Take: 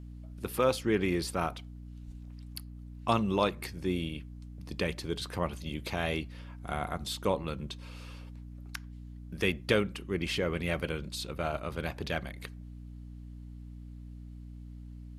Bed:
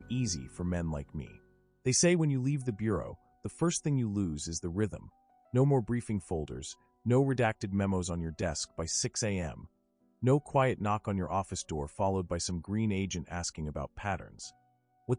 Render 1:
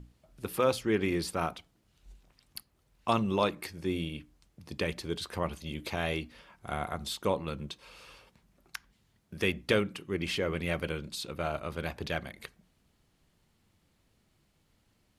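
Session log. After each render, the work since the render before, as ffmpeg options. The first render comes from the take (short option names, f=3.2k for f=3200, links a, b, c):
-af "bandreject=f=60:t=h:w=6,bandreject=f=120:t=h:w=6,bandreject=f=180:t=h:w=6,bandreject=f=240:t=h:w=6,bandreject=f=300:t=h:w=6"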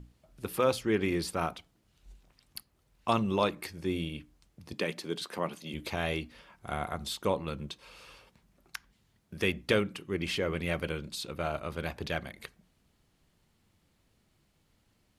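-filter_complex "[0:a]asettb=1/sr,asplit=3[a][b][c];[a]atrim=end=4.734[d];[b]atrim=start=4.73:end=5.74,asetpts=PTS-STARTPTS,afade=t=in:d=0.004:c=qsin,afade=t=out:st=1.006:d=0.004:c=qsin,highpass=f=160:w=0.5412,highpass=f=160:w=1.3066[e];[c]atrim=start=5.736[f];[d][e]acrossfade=d=0.004:c1=hsin:c2=qsin[g];[g][f]acrossfade=d=0.004:c1=qsin:c2=hsin"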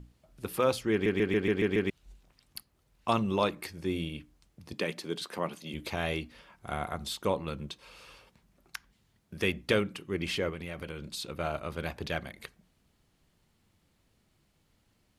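-filter_complex "[0:a]asettb=1/sr,asplit=3[a][b][c];[a]atrim=end=10.494[d];[b]atrim=start=10.49:end=11.11,asetpts=PTS-STARTPTS,afade=t=in:d=0.004:c=qsin,afade=t=out:st=0.616:d=0.004:c=qsin,acompressor=threshold=-35dB:ratio=4:attack=3.2:release=140:knee=1:detection=peak[e];[c]atrim=start=11.106[f];[d][e]acrossfade=d=0.004:c1=hsin:c2=qsin[g];[g][f]acrossfade=d=0.004:c1=qsin:c2=hsin,asplit=8[h][i][j][k][l][m][n][o];[h]atrim=end=1.062[p];[i]atrim=start=0.918:end=1.062[q];[j]atrim=start=0.918:end=1.062[r];[k]atrim=start=0.918:end=1.062[s];[l]atrim=start=0.918:end=1.062[t];[m]atrim=start=0.918:end=1.062[u];[n]atrim=start=0.918:end=1.062[v];[o]atrim=start=1.898[w];[p][q]acrossfade=d=0.004:c1=hsin:c2=hsin[x];[x][r]acrossfade=d=0.004:c1=hsin:c2=hsin[y];[y][s]acrossfade=d=0.004:c1=hsin:c2=hsin[z];[z][t]acrossfade=d=0.004:c1=hsin:c2=hsin[aa];[aa][u]acrossfade=d=0.004:c1=hsin:c2=hsin[ab];[ab][v]acrossfade=d=0.004:c1=hsin:c2=hsin[ac];[ac][w]acrossfade=d=0.004:c1=hsin:c2=hsin"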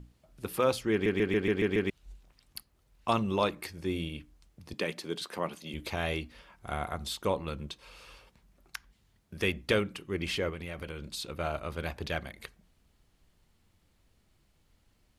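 -af "asubboost=boost=2:cutoff=82"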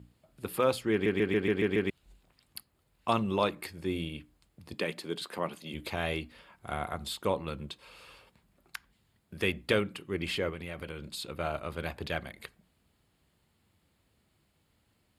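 -af "highpass=78,equalizer=f=5.9k:w=5.8:g=-11"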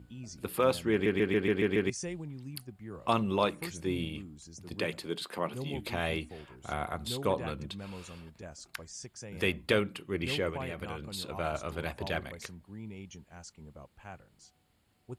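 -filter_complex "[1:a]volume=-13dB[a];[0:a][a]amix=inputs=2:normalize=0"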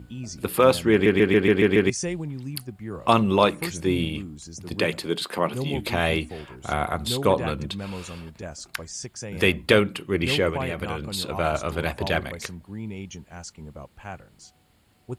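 -af "volume=9.5dB"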